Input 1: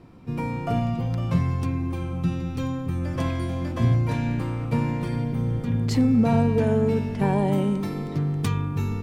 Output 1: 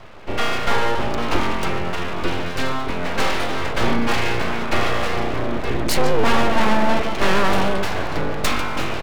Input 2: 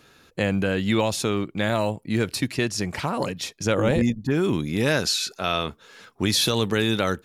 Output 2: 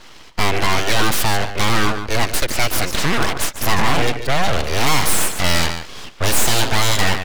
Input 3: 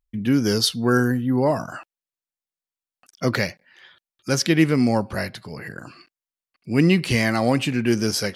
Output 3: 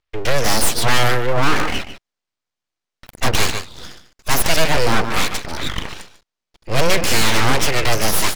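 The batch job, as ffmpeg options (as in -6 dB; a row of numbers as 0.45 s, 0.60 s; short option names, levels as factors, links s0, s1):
-filter_complex "[0:a]aecho=1:1:146:0.224,acrossover=split=230|690|4500[s0][s1][s2][s3];[s3]aeval=exprs='sgn(val(0))*max(abs(val(0))-0.00178,0)':c=same[s4];[s0][s1][s2][s4]amix=inputs=4:normalize=0,asplit=2[s5][s6];[s6]highpass=f=720:p=1,volume=11.2,asoftclip=type=tanh:threshold=0.562[s7];[s5][s7]amix=inputs=2:normalize=0,lowpass=f=7500:p=1,volume=0.501,aeval=exprs='abs(val(0))':c=same,volume=1.33"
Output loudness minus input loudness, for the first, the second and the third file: +3.0 LU, +5.5 LU, +2.5 LU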